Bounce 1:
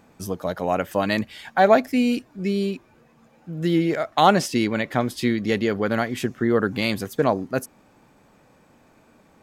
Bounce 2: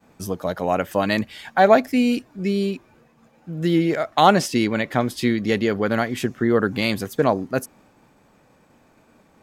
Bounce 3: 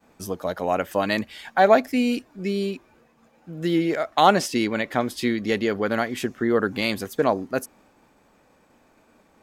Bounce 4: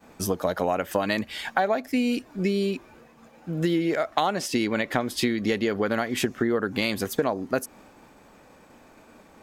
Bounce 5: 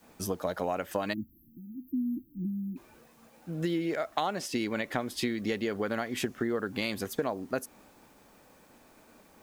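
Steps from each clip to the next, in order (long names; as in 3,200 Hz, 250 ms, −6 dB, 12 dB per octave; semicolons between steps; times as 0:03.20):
downward expander −53 dBFS; level +1.5 dB
parametric band 130 Hz −7 dB 1.1 octaves; level −1.5 dB
downward compressor 10 to 1, threshold −27 dBFS, peak gain reduction 17.5 dB; level +6.5 dB
bit-depth reduction 10 bits, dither triangular; time-frequency box erased 0:01.13–0:02.77, 350–12,000 Hz; level −6.5 dB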